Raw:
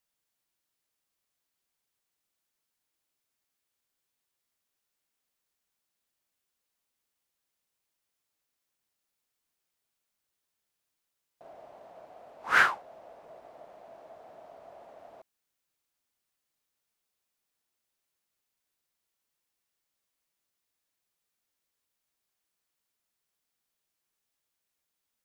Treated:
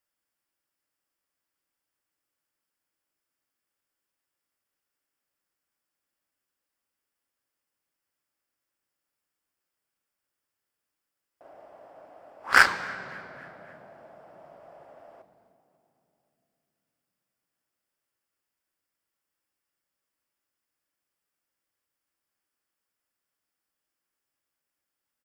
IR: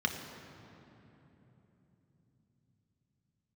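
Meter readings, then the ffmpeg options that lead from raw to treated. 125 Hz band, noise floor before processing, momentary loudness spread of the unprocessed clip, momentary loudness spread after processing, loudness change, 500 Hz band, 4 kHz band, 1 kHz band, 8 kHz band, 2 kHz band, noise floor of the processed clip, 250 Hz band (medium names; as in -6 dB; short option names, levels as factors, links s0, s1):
+6.5 dB, -84 dBFS, 11 LU, 20 LU, +3.0 dB, +2.5 dB, +6.5 dB, +3.0 dB, +9.5 dB, +4.5 dB, under -85 dBFS, +6.0 dB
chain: -filter_complex "[0:a]asplit=5[s0][s1][s2][s3][s4];[s1]adelay=275,afreqshift=35,volume=0.1[s5];[s2]adelay=550,afreqshift=70,volume=0.0531[s6];[s3]adelay=825,afreqshift=105,volume=0.0282[s7];[s4]adelay=1100,afreqshift=140,volume=0.015[s8];[s0][s5][s6][s7][s8]amix=inputs=5:normalize=0,aeval=exprs='0.316*(cos(1*acos(clip(val(0)/0.316,-1,1)))-cos(1*PI/2))+0.0631*(cos(3*acos(clip(val(0)/0.316,-1,1)))-cos(3*PI/2))+0.0398*(cos(7*acos(clip(val(0)/0.316,-1,1)))-cos(7*PI/2))':c=same,asplit=2[s9][s10];[1:a]atrim=start_sample=2205,asetrate=52920,aresample=44100[s11];[s10][s11]afir=irnorm=-1:irlink=0,volume=0.316[s12];[s9][s12]amix=inputs=2:normalize=0,volume=1.88"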